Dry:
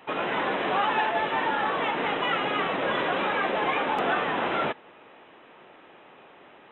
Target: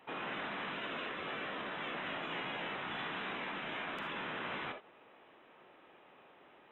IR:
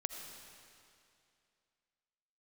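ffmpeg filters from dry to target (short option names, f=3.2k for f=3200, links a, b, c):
-filter_complex "[1:a]atrim=start_sample=2205,afade=t=out:st=0.2:d=0.01,atrim=end_sample=9261,asetrate=79380,aresample=44100[a];[0:a][a]afir=irnorm=-1:irlink=0,afftfilt=real='re*lt(hypot(re,im),0.0708)':imag='im*lt(hypot(re,im),0.0708)':win_size=1024:overlap=0.75,volume=-3.5dB"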